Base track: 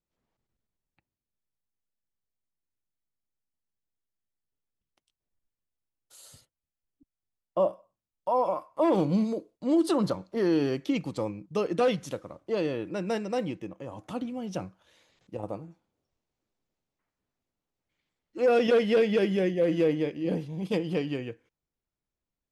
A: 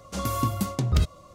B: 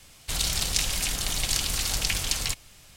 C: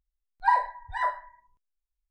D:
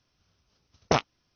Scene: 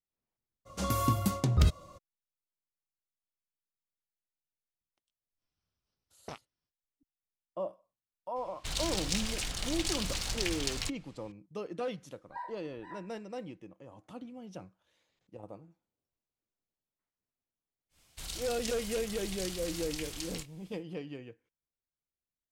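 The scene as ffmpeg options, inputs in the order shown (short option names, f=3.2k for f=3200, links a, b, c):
-filter_complex "[2:a]asplit=2[a][b];[0:a]volume=-11.5dB[c];[4:a]alimiter=limit=-15.5dB:level=0:latency=1:release=376[d];[a]adynamicsmooth=sensitivity=6:basefreq=4.2k[e];[3:a]flanger=delay=18.5:depth=7.2:speed=2.1[f];[b]asplit=2[g][h];[h]adelay=28,volume=-10.5dB[i];[g][i]amix=inputs=2:normalize=0[j];[1:a]atrim=end=1.34,asetpts=PTS-STARTPTS,volume=-2.5dB,afade=t=in:d=0.02,afade=t=out:st=1.32:d=0.02,adelay=650[k];[d]atrim=end=1.35,asetpts=PTS-STARTPTS,volume=-18dB,afade=t=in:d=0.05,afade=t=out:st=1.3:d=0.05,adelay=236817S[l];[e]atrim=end=2.96,asetpts=PTS-STARTPTS,volume=-6.5dB,afade=t=in:d=0.004:c=hsin,afade=t=out:st=2.956:d=0.004:c=hsin,adelay=8360[m];[f]atrim=end=2.1,asetpts=PTS-STARTPTS,volume=-17.5dB,afade=t=in:d=0.004:c=hsin,afade=t=out:st=2.096:d=0.004:c=hsin,adelay=11880[n];[j]atrim=end=2.96,asetpts=PTS-STARTPTS,volume=-14.5dB,afade=t=in:d=0.1,afade=t=out:st=2.86:d=0.1,adelay=17890[o];[c][k][l][m][n][o]amix=inputs=6:normalize=0"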